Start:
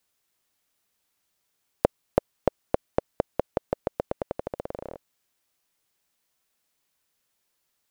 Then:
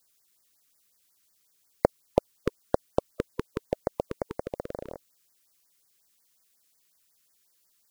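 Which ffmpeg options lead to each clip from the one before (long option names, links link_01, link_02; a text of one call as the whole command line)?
ffmpeg -i in.wav -af "highshelf=frequency=3300:gain=8.5,afftfilt=real='re*(1-between(b*sr/1024,630*pow(3200/630,0.5+0.5*sin(2*PI*5.5*pts/sr))/1.41,630*pow(3200/630,0.5+0.5*sin(2*PI*5.5*pts/sr))*1.41))':imag='im*(1-between(b*sr/1024,630*pow(3200/630,0.5+0.5*sin(2*PI*5.5*pts/sr))/1.41,630*pow(3200/630,0.5+0.5*sin(2*PI*5.5*pts/sr))*1.41))':win_size=1024:overlap=0.75" out.wav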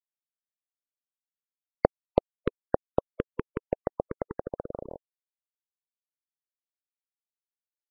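ffmpeg -i in.wav -af "afftfilt=real='re*gte(hypot(re,im),0.01)':imag='im*gte(hypot(re,im),0.01)':win_size=1024:overlap=0.75" out.wav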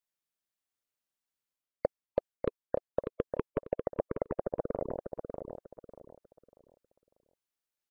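ffmpeg -i in.wav -filter_complex "[0:a]areverse,acompressor=threshold=-32dB:ratio=6,areverse,asplit=2[link_01][link_02];[link_02]adelay=594,lowpass=frequency=3800:poles=1,volume=-6dB,asplit=2[link_03][link_04];[link_04]adelay=594,lowpass=frequency=3800:poles=1,volume=0.29,asplit=2[link_05][link_06];[link_06]adelay=594,lowpass=frequency=3800:poles=1,volume=0.29,asplit=2[link_07][link_08];[link_08]adelay=594,lowpass=frequency=3800:poles=1,volume=0.29[link_09];[link_01][link_03][link_05][link_07][link_09]amix=inputs=5:normalize=0,volume=4dB" out.wav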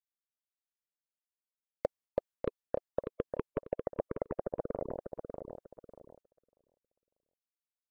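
ffmpeg -i in.wav -af "agate=range=-11dB:threshold=-58dB:ratio=16:detection=peak,volume=-2.5dB" out.wav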